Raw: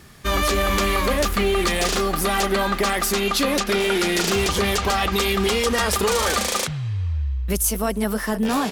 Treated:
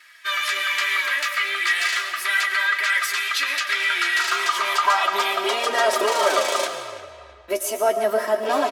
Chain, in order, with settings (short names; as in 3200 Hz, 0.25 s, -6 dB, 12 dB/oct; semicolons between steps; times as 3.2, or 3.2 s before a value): high shelf 5300 Hz -9.5 dB; comb 3.1 ms, depth 95%; tape echo 0.332 s, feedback 47%, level -16 dB, low-pass 3200 Hz; high-pass sweep 1800 Hz -> 540 Hz, 3.83–5.82; reverb RT60 1.2 s, pre-delay 70 ms, DRR 8.5 dB; flange 0.35 Hz, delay 6.3 ms, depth 9.7 ms, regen +46%; gain +2 dB